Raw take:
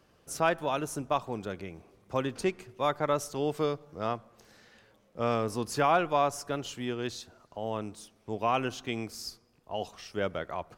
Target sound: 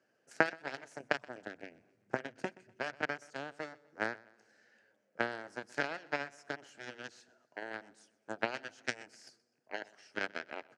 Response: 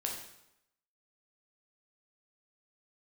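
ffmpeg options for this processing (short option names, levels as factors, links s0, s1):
-filter_complex "[0:a]asplit=3[s0][s1][s2];[s0]afade=t=out:st=0.98:d=0.02[s3];[s1]asubboost=boost=7:cutoff=200,afade=t=in:st=0.98:d=0.02,afade=t=out:st=3.01:d=0.02[s4];[s2]afade=t=in:st=3.01:d=0.02[s5];[s3][s4][s5]amix=inputs=3:normalize=0,acompressor=threshold=0.0224:ratio=5,aeval=exprs='0.1*(cos(1*acos(clip(val(0)/0.1,-1,1)))-cos(1*PI/2))+0.0355*(cos(3*acos(clip(val(0)/0.1,-1,1)))-cos(3*PI/2))+0.00282*(cos(6*acos(clip(val(0)/0.1,-1,1)))-cos(6*PI/2))+0.002*(cos(8*acos(clip(val(0)/0.1,-1,1)))-cos(8*PI/2))':c=same,highpass=f=150:w=0.5412,highpass=f=150:w=1.3066,equalizer=f=170:t=q:w=4:g=-9,equalizer=f=630:t=q:w=4:g=4,equalizer=f=1100:t=q:w=4:g=-10,equalizer=f=1600:t=q:w=4:g=10,equalizer=f=3600:t=q:w=4:g=-9,lowpass=f=8400:w=0.5412,lowpass=f=8400:w=1.3066,aecho=1:1:125|250|375:0.0794|0.0318|0.0127,volume=4.22"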